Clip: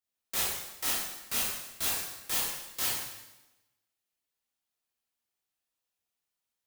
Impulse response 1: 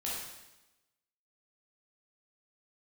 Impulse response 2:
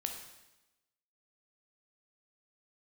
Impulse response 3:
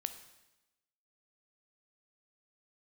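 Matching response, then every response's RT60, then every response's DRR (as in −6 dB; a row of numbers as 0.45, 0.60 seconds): 1; 1.0, 1.0, 1.0 seconds; −6.5, 3.0, 9.0 decibels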